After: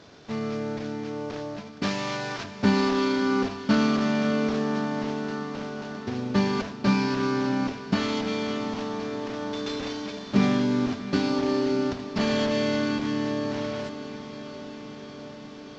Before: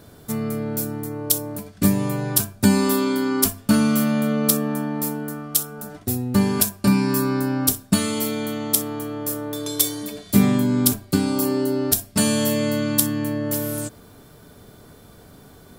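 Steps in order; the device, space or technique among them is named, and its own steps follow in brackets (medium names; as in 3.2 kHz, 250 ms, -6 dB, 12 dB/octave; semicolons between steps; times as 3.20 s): early wireless headset (high-pass 290 Hz 6 dB/octave; CVSD coder 32 kbps); 1.83–2.44 s: tilt shelf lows -7 dB, about 810 Hz; echo that smears into a reverb 661 ms, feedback 74%, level -13.5 dB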